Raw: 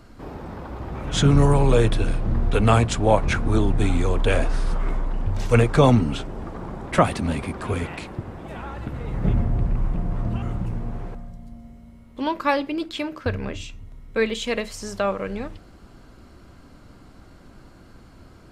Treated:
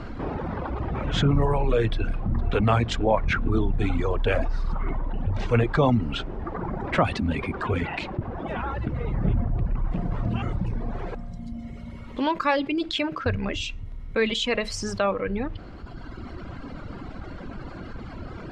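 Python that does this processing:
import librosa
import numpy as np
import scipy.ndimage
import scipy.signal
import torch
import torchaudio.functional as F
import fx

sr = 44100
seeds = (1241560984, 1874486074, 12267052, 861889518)

y = fx.echo_throw(x, sr, start_s=1.93, length_s=0.74, ms=450, feedback_pct=75, wet_db=-15.0)
y = fx.high_shelf(y, sr, hz=4100.0, db=11.0, at=(9.91, 15.12))
y = fx.dereverb_blind(y, sr, rt60_s=1.6)
y = scipy.signal.sosfilt(scipy.signal.butter(2, 3200.0, 'lowpass', fs=sr, output='sos'), y)
y = fx.env_flatten(y, sr, amount_pct=50)
y = y * librosa.db_to_amplitude(-5.0)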